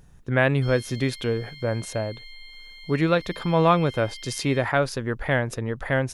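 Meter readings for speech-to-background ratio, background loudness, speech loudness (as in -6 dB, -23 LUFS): 17.5 dB, -42.0 LUFS, -24.5 LUFS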